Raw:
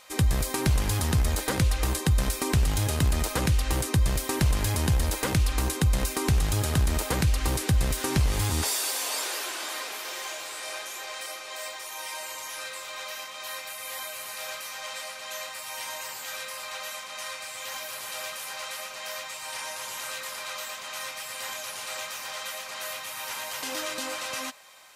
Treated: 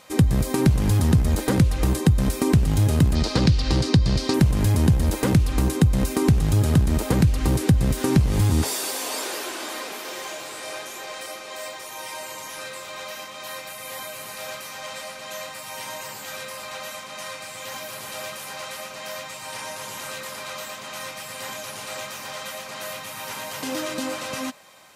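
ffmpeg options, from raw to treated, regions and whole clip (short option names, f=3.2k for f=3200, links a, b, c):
-filter_complex "[0:a]asettb=1/sr,asplit=3[a][b][c];[a]atrim=end=3.154[d];[b]atrim=start=3.15:end=4.34,asetpts=PTS-STARTPTS,afade=t=in:d=0.004:c=qsin,afade=t=out:st=1.186:d=0.004:c=qsin,lowpass=5.8k,equalizer=f=4.6k:w=1.6:g=14[e];[c]atrim=start=4.336[f];[d][e]acrossfade=d=0.004:c1=hsin:c2=qsin[g];[g][f]acrossfade=d=0.004:c1=qsin:c2=hsin,equalizer=f=170:w=0.41:g=14.5,acompressor=threshold=-17dB:ratio=2"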